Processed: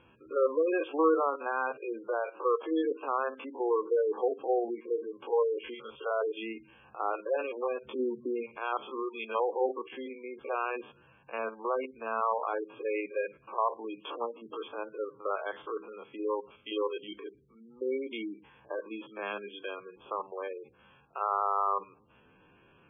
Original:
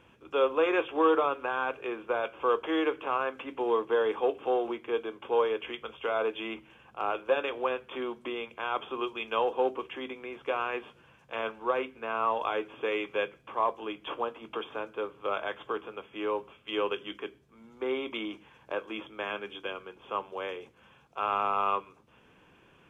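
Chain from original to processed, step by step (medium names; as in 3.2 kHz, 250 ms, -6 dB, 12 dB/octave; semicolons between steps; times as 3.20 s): spectrogram pixelated in time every 50 ms; 7.85–8.43 s: bass shelf 380 Hz +8.5 dB; spectral gate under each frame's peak -15 dB strong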